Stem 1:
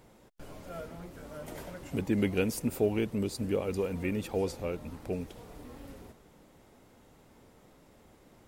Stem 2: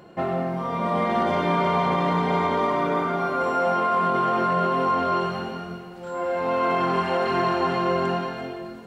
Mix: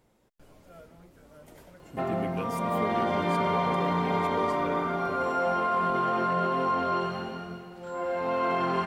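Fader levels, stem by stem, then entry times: -8.5, -4.5 dB; 0.00, 1.80 s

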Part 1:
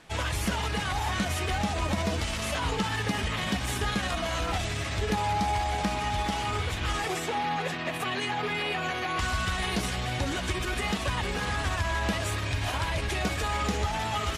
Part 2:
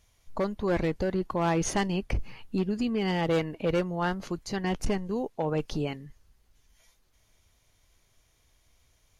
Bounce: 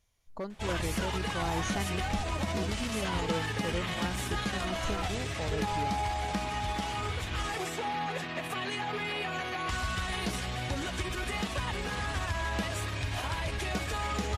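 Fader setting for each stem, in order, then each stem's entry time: -4.0, -9.0 dB; 0.50, 0.00 s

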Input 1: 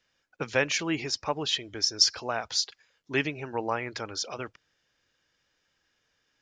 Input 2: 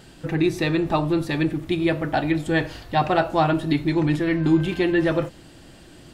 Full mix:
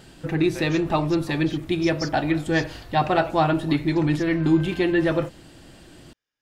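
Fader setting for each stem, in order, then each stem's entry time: -13.5, -0.5 dB; 0.00, 0.00 s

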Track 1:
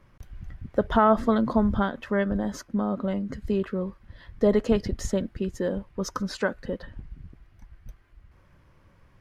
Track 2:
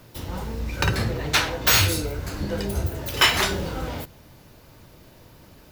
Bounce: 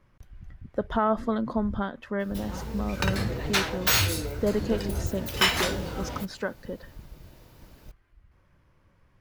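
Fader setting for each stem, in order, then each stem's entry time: -5.0, -4.5 dB; 0.00, 2.20 s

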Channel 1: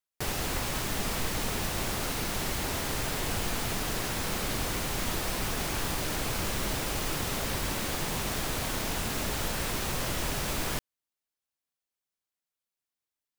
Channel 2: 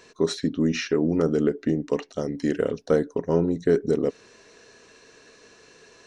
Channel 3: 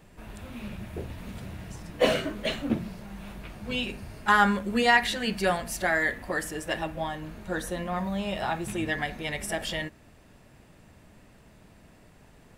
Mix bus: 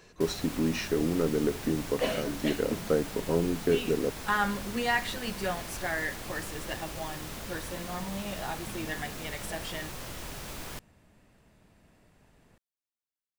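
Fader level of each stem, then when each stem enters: -9.0, -5.5, -7.0 dB; 0.00, 0.00, 0.00 s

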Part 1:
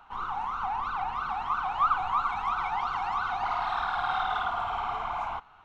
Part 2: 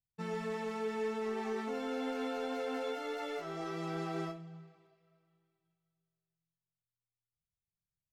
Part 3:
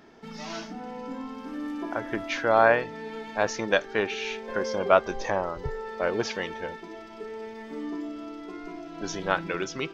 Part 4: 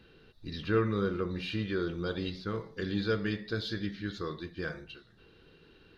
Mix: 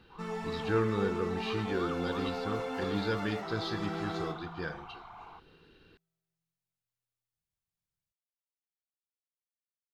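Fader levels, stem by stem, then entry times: -17.0 dB, +0.5 dB, off, -1.5 dB; 0.00 s, 0.00 s, off, 0.00 s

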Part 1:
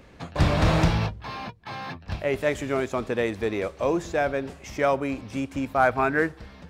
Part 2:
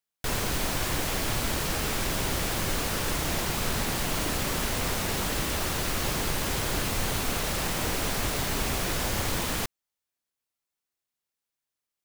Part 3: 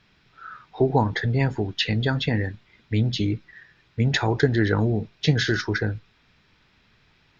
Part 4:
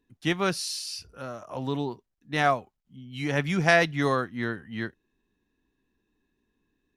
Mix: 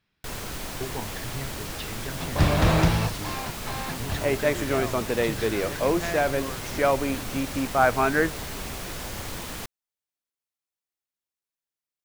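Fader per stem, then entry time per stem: +0.5, -6.0, -15.0, -13.0 dB; 2.00, 0.00, 0.00, 2.35 s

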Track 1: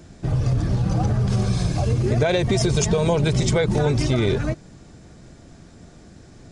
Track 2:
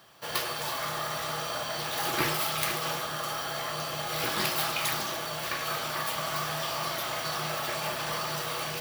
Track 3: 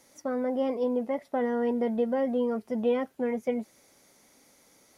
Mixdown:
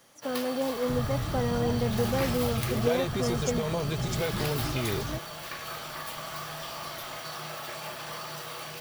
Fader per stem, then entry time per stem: -11.0, -6.0, -2.0 dB; 0.65, 0.00, 0.00 s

